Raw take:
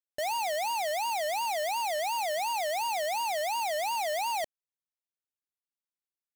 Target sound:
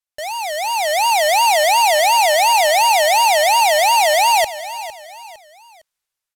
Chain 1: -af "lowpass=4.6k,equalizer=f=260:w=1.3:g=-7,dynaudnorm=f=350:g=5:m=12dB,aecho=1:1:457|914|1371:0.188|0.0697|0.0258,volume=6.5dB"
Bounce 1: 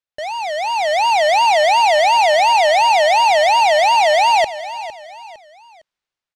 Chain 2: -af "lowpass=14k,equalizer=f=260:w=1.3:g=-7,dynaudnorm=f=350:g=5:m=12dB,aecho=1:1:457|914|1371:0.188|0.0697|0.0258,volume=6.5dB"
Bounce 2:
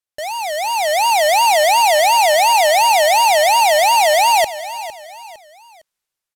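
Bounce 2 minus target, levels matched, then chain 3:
250 Hz band +5.5 dB
-af "lowpass=14k,equalizer=f=260:w=1.3:g=-16.5,dynaudnorm=f=350:g=5:m=12dB,aecho=1:1:457|914|1371:0.188|0.0697|0.0258,volume=6.5dB"

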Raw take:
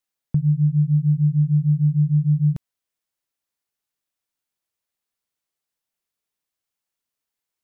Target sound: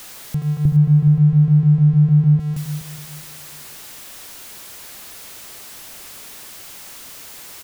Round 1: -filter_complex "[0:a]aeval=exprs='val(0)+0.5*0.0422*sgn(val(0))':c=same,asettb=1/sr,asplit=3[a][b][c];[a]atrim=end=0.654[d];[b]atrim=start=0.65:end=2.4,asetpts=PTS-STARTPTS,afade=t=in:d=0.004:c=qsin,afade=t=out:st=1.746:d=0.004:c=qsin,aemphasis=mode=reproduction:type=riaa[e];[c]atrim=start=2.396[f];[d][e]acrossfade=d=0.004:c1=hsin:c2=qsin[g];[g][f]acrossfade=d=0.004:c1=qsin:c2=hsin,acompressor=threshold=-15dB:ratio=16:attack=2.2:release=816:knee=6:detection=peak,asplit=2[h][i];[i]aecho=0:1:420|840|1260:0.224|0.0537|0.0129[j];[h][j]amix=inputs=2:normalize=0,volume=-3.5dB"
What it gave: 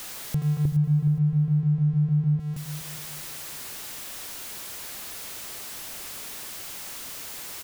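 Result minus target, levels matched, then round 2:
compressor: peak gain reduction +10 dB
-filter_complex "[0:a]aeval=exprs='val(0)+0.5*0.0422*sgn(val(0))':c=same,asettb=1/sr,asplit=3[a][b][c];[a]atrim=end=0.654[d];[b]atrim=start=0.65:end=2.4,asetpts=PTS-STARTPTS,afade=t=in:d=0.004:c=qsin,afade=t=out:st=1.746:d=0.004:c=qsin,aemphasis=mode=reproduction:type=riaa[e];[c]atrim=start=2.396[f];[d][e]acrossfade=d=0.004:c1=hsin:c2=qsin[g];[g][f]acrossfade=d=0.004:c1=qsin:c2=hsin,acompressor=threshold=-4dB:ratio=16:attack=2.2:release=816:knee=6:detection=peak,asplit=2[h][i];[i]aecho=0:1:420|840|1260:0.224|0.0537|0.0129[j];[h][j]amix=inputs=2:normalize=0,volume=-3.5dB"

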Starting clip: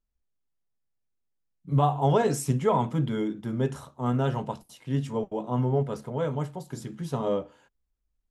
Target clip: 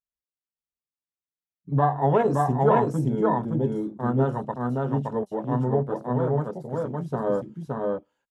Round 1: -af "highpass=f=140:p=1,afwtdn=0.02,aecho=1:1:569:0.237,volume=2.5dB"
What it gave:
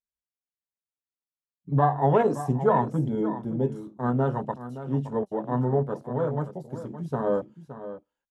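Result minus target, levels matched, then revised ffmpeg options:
echo-to-direct -10.5 dB
-af "highpass=f=140:p=1,afwtdn=0.02,aecho=1:1:569:0.794,volume=2.5dB"

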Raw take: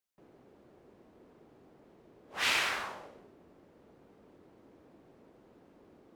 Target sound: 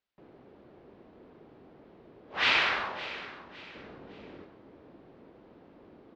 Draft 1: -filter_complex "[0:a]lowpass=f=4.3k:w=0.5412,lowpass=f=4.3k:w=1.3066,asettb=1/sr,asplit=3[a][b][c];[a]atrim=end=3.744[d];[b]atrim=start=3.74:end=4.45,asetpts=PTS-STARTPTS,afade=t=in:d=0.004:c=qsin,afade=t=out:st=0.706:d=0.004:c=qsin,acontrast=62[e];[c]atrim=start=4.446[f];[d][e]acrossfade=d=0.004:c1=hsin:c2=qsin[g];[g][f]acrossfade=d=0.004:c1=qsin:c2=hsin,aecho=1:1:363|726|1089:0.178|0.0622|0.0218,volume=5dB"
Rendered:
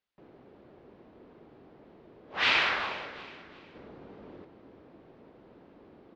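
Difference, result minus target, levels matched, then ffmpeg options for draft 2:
echo 0.198 s early
-filter_complex "[0:a]lowpass=f=4.3k:w=0.5412,lowpass=f=4.3k:w=1.3066,asettb=1/sr,asplit=3[a][b][c];[a]atrim=end=3.744[d];[b]atrim=start=3.74:end=4.45,asetpts=PTS-STARTPTS,afade=t=in:d=0.004:c=qsin,afade=t=out:st=0.706:d=0.004:c=qsin,acontrast=62[e];[c]atrim=start=4.446[f];[d][e]acrossfade=d=0.004:c1=hsin:c2=qsin[g];[g][f]acrossfade=d=0.004:c1=qsin:c2=hsin,aecho=1:1:561|1122|1683:0.178|0.0622|0.0218,volume=5dB"

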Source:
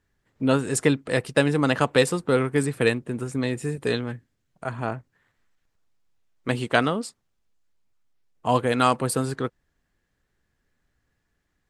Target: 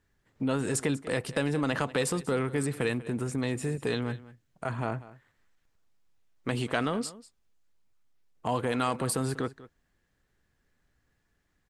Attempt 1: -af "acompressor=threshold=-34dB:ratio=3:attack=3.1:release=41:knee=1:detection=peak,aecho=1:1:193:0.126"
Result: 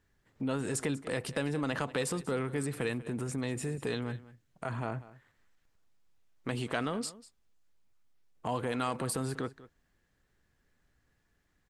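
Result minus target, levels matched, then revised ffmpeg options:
compressor: peak gain reduction +4.5 dB
-af "acompressor=threshold=-27.5dB:ratio=3:attack=3.1:release=41:knee=1:detection=peak,aecho=1:1:193:0.126"

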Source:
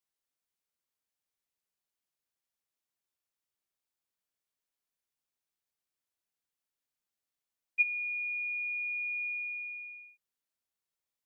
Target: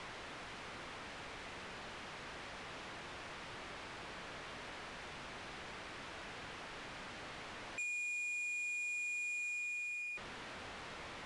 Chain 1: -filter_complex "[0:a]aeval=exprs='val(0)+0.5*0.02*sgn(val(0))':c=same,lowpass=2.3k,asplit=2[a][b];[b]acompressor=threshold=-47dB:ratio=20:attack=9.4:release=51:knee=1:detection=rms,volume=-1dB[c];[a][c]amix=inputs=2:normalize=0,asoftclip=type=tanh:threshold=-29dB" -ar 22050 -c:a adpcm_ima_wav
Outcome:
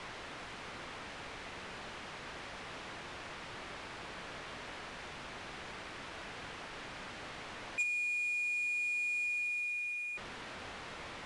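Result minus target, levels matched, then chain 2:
compressor: peak gain reduction -6 dB; soft clip: distortion -8 dB
-filter_complex "[0:a]aeval=exprs='val(0)+0.5*0.02*sgn(val(0))':c=same,lowpass=2.3k,asplit=2[a][b];[b]acompressor=threshold=-53.5dB:ratio=20:attack=9.4:release=51:knee=1:detection=rms,volume=-1dB[c];[a][c]amix=inputs=2:normalize=0,asoftclip=type=tanh:threshold=-38.5dB" -ar 22050 -c:a adpcm_ima_wav

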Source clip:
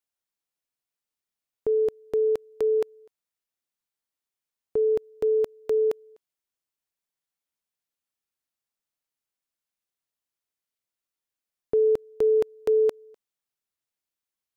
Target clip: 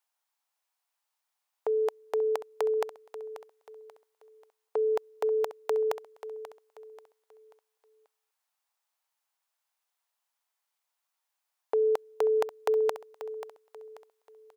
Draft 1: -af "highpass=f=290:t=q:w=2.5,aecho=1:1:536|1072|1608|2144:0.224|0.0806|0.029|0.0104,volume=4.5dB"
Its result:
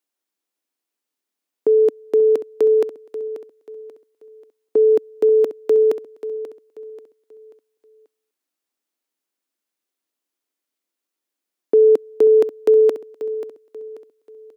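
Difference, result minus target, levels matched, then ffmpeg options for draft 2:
1000 Hz band -18.5 dB
-af "highpass=f=840:t=q:w=2.5,aecho=1:1:536|1072|1608|2144:0.224|0.0806|0.029|0.0104,volume=4.5dB"

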